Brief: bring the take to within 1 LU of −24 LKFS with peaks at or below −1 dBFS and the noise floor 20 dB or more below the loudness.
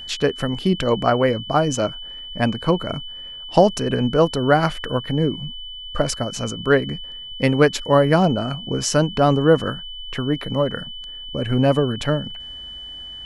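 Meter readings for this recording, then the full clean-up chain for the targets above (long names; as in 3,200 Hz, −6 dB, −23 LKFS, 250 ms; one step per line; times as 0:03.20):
interfering tone 3,000 Hz; level of the tone −33 dBFS; integrated loudness −20.5 LKFS; sample peak −1.5 dBFS; target loudness −24.0 LKFS
→ notch filter 3,000 Hz, Q 30
level −3.5 dB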